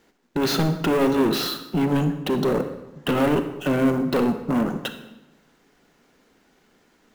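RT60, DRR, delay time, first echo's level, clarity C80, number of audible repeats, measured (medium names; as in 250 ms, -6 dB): 1.0 s, 8.5 dB, no echo, no echo, 12.0 dB, no echo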